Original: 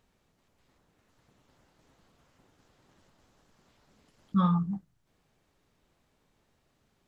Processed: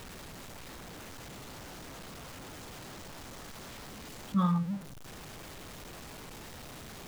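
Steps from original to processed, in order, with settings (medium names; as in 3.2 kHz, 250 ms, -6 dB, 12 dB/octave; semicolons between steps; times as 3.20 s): jump at every zero crossing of -37.5 dBFS; trim -3 dB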